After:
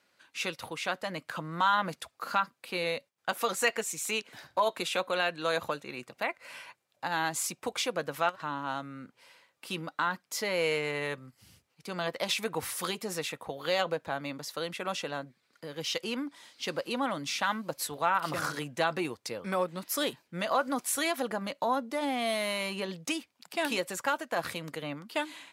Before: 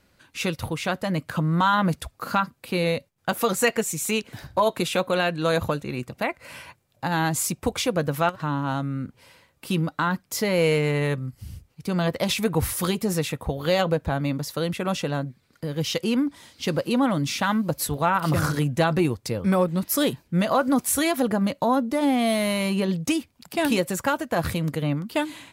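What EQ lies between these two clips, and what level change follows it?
weighting filter A; -5.0 dB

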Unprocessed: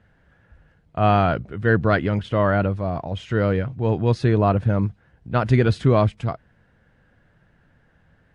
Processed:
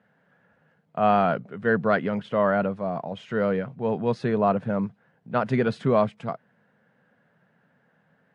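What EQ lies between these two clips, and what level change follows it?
HPF 170 Hz 24 dB/oct; bell 320 Hz -11.5 dB 0.35 oct; high shelf 2300 Hz -9.5 dB; 0.0 dB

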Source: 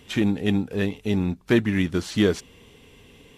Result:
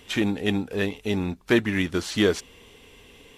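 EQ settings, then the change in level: bell 140 Hz -8 dB 2.1 oct; +2.5 dB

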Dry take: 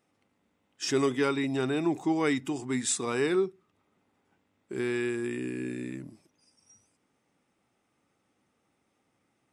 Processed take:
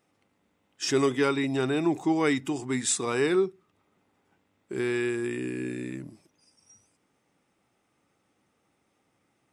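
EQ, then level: bell 240 Hz -3 dB 0.23 oct; +2.5 dB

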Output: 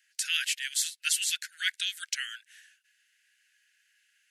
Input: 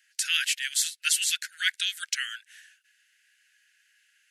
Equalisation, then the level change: HPF 1200 Hz; -3.0 dB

